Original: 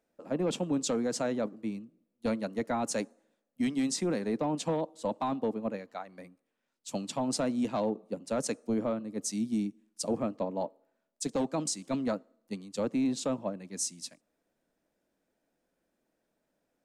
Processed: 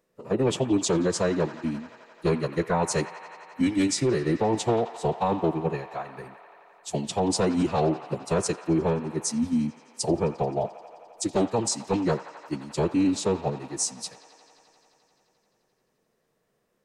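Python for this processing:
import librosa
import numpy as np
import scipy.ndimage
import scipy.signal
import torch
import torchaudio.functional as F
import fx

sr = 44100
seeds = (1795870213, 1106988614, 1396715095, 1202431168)

y = fx.pitch_keep_formants(x, sr, semitones=-5.5)
y = fx.echo_wet_bandpass(y, sr, ms=87, feedback_pct=84, hz=1600.0, wet_db=-11.5)
y = y * 10.0 ** (7.0 / 20.0)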